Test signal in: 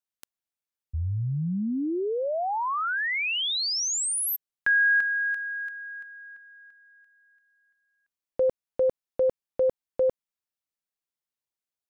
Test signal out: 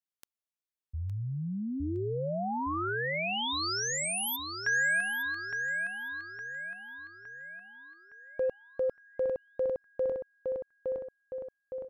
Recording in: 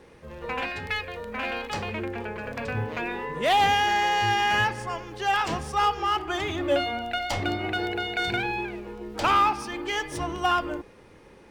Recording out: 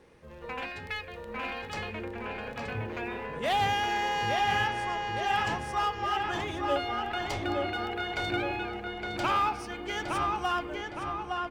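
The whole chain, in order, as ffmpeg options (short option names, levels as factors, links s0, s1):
-filter_complex "[0:a]asplit=2[s0][s1];[s1]adelay=863,lowpass=f=3400:p=1,volume=0.708,asplit=2[s2][s3];[s3]adelay=863,lowpass=f=3400:p=1,volume=0.54,asplit=2[s4][s5];[s5]adelay=863,lowpass=f=3400:p=1,volume=0.54,asplit=2[s6][s7];[s7]adelay=863,lowpass=f=3400:p=1,volume=0.54,asplit=2[s8][s9];[s9]adelay=863,lowpass=f=3400:p=1,volume=0.54,asplit=2[s10][s11];[s11]adelay=863,lowpass=f=3400:p=1,volume=0.54,asplit=2[s12][s13];[s13]adelay=863,lowpass=f=3400:p=1,volume=0.54[s14];[s0][s2][s4][s6][s8][s10][s12][s14]amix=inputs=8:normalize=0,volume=0.473"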